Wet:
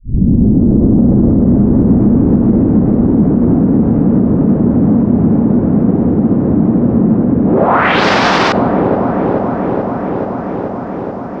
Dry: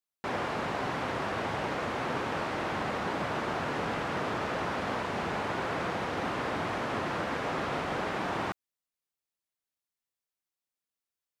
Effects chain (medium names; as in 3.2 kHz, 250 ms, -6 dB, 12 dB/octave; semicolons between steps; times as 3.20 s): tape start-up on the opening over 2.21 s; low-pass 8.9 kHz 12 dB/octave; bass shelf 330 Hz -9 dB; gain riding within 4 dB; low-pass sweep 230 Hz -> 5.2 kHz, 7.45–8.04 s; feedback echo behind a low-pass 432 ms, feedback 81%, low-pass 530 Hz, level -3.5 dB; on a send at -21.5 dB: reverberation RT60 0.85 s, pre-delay 3 ms; on the sum: loudness maximiser +29 dB; trim -1 dB